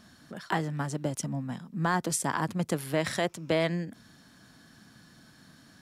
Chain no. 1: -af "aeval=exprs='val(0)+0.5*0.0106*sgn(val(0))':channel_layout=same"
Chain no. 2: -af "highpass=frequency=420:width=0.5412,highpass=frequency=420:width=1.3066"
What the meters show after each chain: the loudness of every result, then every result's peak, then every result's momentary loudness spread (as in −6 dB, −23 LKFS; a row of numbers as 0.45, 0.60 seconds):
−30.0, −32.5 LKFS; −14.5, −15.0 dBFS; 15, 17 LU